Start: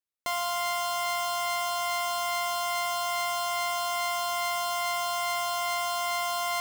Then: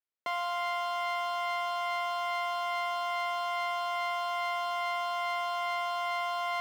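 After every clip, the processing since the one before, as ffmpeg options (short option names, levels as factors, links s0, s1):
-filter_complex "[0:a]acrossover=split=220 3700:gain=0.224 1 0.112[s0][s1][s2];[s0][s1][s2]amix=inputs=3:normalize=0,volume=0.794"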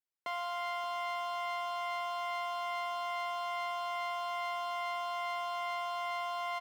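-filter_complex "[0:a]asplit=2[s0][s1];[s1]adelay=577.3,volume=0.224,highshelf=f=4000:g=-13[s2];[s0][s2]amix=inputs=2:normalize=0,volume=0.596"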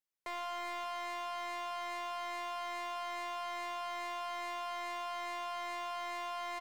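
-af "asoftclip=type=hard:threshold=0.0141,volume=0.891"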